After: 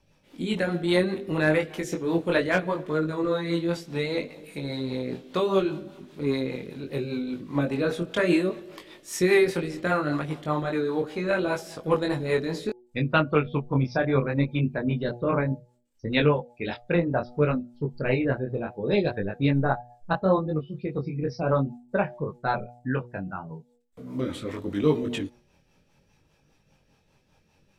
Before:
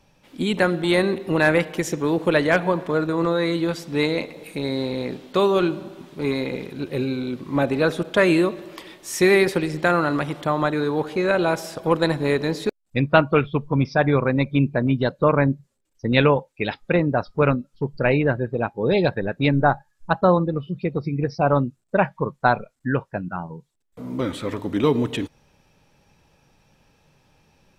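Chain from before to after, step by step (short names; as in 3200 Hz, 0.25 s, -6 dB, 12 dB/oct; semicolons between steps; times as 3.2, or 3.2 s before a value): de-hum 121 Hz, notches 7; chorus 0.68 Hz, delay 19.5 ms, depth 4 ms; rotary speaker horn 5 Hz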